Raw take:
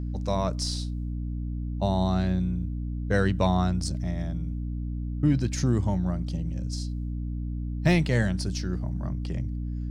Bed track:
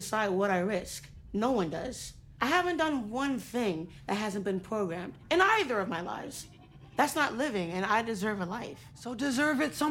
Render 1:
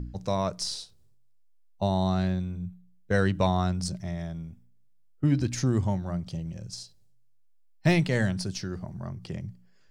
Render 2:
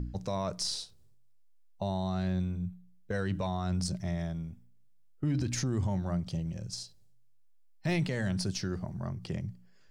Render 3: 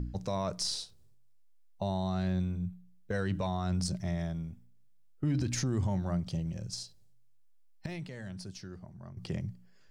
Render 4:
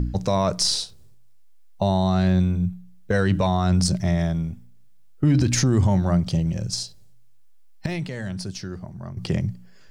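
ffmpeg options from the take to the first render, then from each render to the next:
-af "bandreject=f=60:t=h:w=4,bandreject=f=120:t=h:w=4,bandreject=f=180:t=h:w=4,bandreject=f=240:t=h:w=4,bandreject=f=300:t=h:w=4"
-af "alimiter=limit=-22.5dB:level=0:latency=1:release=28"
-filter_complex "[0:a]asplit=3[a][b][c];[a]atrim=end=7.862[d];[b]atrim=start=7.858:end=9.172,asetpts=PTS-STARTPTS,volume=-11dB[e];[c]atrim=start=9.168[f];[d][e]acrossfade=d=0.004:c1=hsin:c2=hsin[g];[g][f]acrossfade=d=0.004:c1=hsin:c2=hsin"
-af "volume=12dB"

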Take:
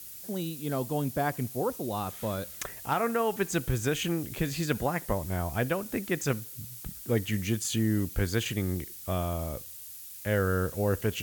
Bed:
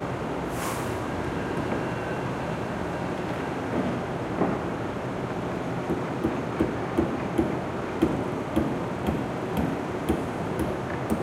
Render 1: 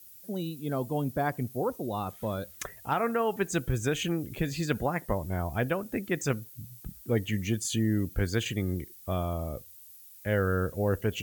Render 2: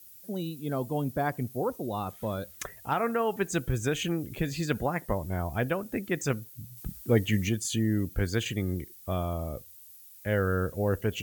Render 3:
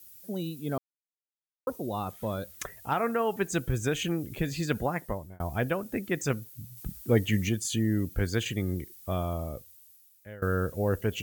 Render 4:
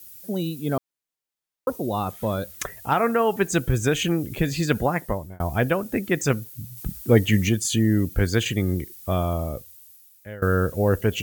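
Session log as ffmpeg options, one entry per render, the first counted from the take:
-af "afftdn=nr=11:nf=-44"
-filter_complex "[0:a]asplit=3[a][b][c];[a]atrim=end=6.772[d];[b]atrim=start=6.768:end=7.492,asetpts=PTS-STARTPTS,volume=4dB[e];[c]atrim=start=7.488[f];[d][e]acrossfade=d=0.004:c1=hsin:c2=hsin[g];[g][f]acrossfade=d=0.004:c1=hsin:c2=hsin"
-filter_complex "[0:a]asplit=5[a][b][c][d][e];[a]atrim=end=0.78,asetpts=PTS-STARTPTS,afade=t=out:st=0.776:d=0.004:c=hsin[f];[b]atrim=start=0.78:end=1.67,asetpts=PTS-STARTPTS,volume=0[g];[c]atrim=start=1.67:end=5.4,asetpts=PTS-STARTPTS,afade=t=in:d=0.004:c=hsin,afade=t=out:st=3.11:d=0.62:c=qsin[h];[d]atrim=start=5.4:end=10.42,asetpts=PTS-STARTPTS,afade=t=in:d=0.004:c=hsin,afade=t=out:st=3.96:d=1.06:silence=0.0707946[i];[e]atrim=start=10.42,asetpts=PTS-STARTPTS,afade=t=in:d=0.004:c=hsin:silence=0.0707946[j];[f][g][h][i][j]concat=n=5:v=0:a=1"
-af "volume=7dB"

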